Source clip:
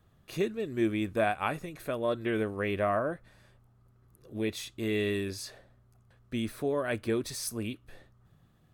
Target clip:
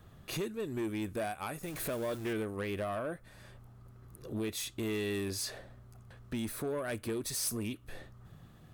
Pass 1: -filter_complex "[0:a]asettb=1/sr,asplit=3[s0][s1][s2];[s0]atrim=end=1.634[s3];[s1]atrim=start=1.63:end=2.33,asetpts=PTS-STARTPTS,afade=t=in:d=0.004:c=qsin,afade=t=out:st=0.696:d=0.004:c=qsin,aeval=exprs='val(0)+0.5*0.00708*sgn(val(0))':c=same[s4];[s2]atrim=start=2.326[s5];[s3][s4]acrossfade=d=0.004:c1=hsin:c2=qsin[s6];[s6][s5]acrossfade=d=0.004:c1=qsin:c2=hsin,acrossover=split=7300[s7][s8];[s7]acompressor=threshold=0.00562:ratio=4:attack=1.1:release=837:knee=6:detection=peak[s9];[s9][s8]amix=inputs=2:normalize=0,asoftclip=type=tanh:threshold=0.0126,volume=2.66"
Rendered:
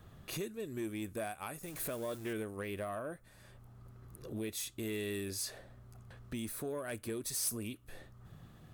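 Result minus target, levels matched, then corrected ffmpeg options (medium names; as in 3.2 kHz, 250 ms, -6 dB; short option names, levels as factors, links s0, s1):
compression: peak gain reduction +5.5 dB
-filter_complex "[0:a]asettb=1/sr,asplit=3[s0][s1][s2];[s0]atrim=end=1.634[s3];[s1]atrim=start=1.63:end=2.33,asetpts=PTS-STARTPTS,afade=t=in:d=0.004:c=qsin,afade=t=out:st=0.696:d=0.004:c=qsin,aeval=exprs='val(0)+0.5*0.00708*sgn(val(0))':c=same[s4];[s2]atrim=start=2.326[s5];[s3][s4]acrossfade=d=0.004:c1=hsin:c2=qsin[s6];[s6][s5]acrossfade=d=0.004:c1=qsin:c2=hsin,acrossover=split=7300[s7][s8];[s7]acompressor=threshold=0.0133:ratio=4:attack=1.1:release=837:knee=6:detection=peak[s9];[s9][s8]amix=inputs=2:normalize=0,asoftclip=type=tanh:threshold=0.0126,volume=2.66"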